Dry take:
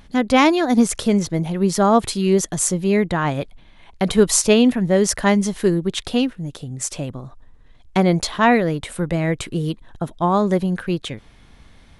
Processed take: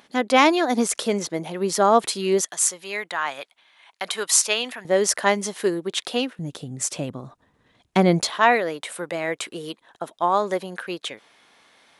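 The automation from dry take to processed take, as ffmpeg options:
ffmpeg -i in.wav -af "asetnsamples=nb_out_samples=441:pad=0,asendcmd='2.42 highpass f 1000;4.85 highpass f 410;6.39 highpass f 160;8.3 highpass f 510',highpass=360" out.wav

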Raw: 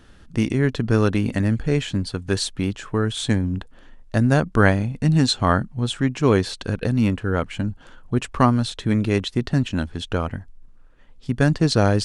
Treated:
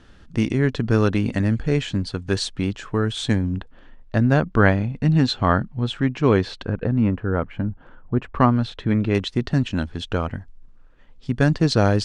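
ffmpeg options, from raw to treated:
ffmpeg -i in.wav -af "asetnsamples=nb_out_samples=441:pad=0,asendcmd='3.58 lowpass f 3800;6.65 lowpass f 1600;8.35 lowpass f 3000;9.15 lowpass f 6500',lowpass=6900" out.wav

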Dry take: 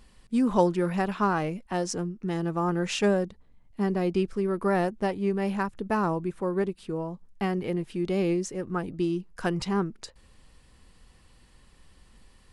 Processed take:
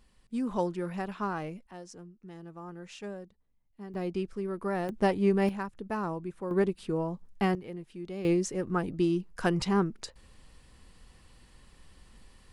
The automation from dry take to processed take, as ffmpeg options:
ffmpeg -i in.wav -af "asetnsamples=nb_out_samples=441:pad=0,asendcmd='1.71 volume volume -17dB;3.94 volume volume -7dB;4.89 volume volume 2dB;5.49 volume volume -7dB;6.51 volume volume 1dB;7.55 volume volume -11.5dB;8.25 volume volume 0.5dB',volume=-8dB" out.wav

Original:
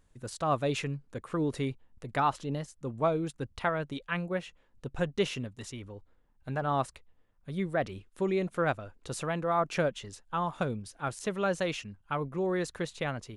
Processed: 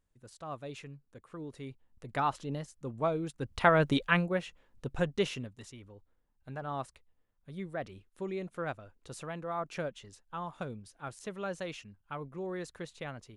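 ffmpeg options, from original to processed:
ffmpeg -i in.wav -af "volume=10dB,afade=type=in:start_time=1.59:duration=0.6:silence=0.316228,afade=type=in:start_time=3.37:duration=0.58:silence=0.223872,afade=type=out:start_time=3.95:duration=0.35:silence=0.354813,afade=type=out:start_time=4.9:duration=0.82:silence=0.354813" out.wav

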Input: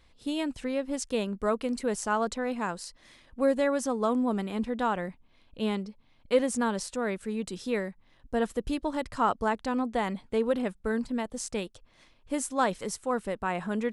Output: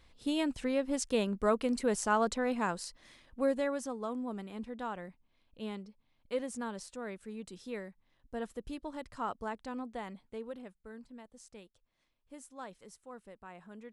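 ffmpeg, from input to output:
ffmpeg -i in.wav -af "volume=-1dB,afade=type=out:start_time=2.75:duration=1.27:silence=0.316228,afade=type=out:start_time=9.75:duration=1.04:silence=0.375837" out.wav

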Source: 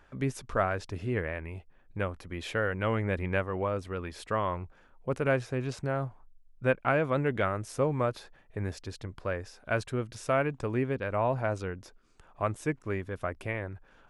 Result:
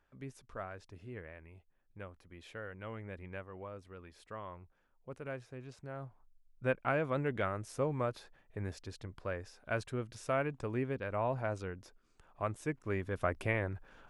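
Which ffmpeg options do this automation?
ffmpeg -i in.wav -af "volume=1dB,afade=type=in:start_time=5.81:duration=0.91:silence=0.334965,afade=type=in:start_time=12.74:duration=0.56:silence=0.446684" out.wav

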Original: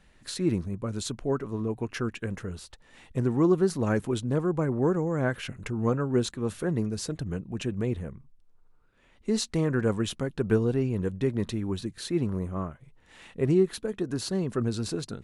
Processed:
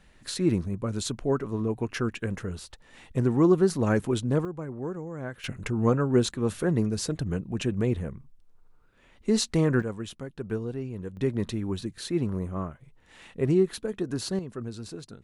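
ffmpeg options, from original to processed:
ffmpeg -i in.wav -af "asetnsamples=nb_out_samples=441:pad=0,asendcmd='4.45 volume volume -9dB;5.44 volume volume 3dB;9.82 volume volume -7.5dB;11.17 volume volume 0dB;14.39 volume volume -8dB',volume=2dB" out.wav

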